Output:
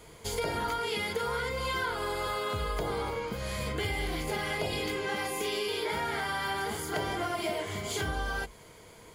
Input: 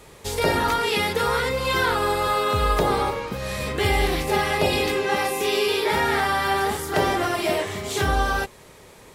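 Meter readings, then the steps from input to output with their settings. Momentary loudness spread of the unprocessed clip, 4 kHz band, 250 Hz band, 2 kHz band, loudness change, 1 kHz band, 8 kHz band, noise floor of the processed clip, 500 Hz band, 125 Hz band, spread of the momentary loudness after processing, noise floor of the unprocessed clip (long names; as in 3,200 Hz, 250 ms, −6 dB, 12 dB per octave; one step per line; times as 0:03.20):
5 LU, −8.5 dB, −9.5 dB, −9.0 dB, −10.0 dB, −11.0 dB, −7.5 dB, −52 dBFS, −10.5 dB, −9.0 dB, 3 LU, −48 dBFS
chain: EQ curve with evenly spaced ripples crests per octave 1.8, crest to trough 8 dB
downward compressor 4 to 1, threshold −24 dBFS, peak gain reduction 8 dB
level −5.5 dB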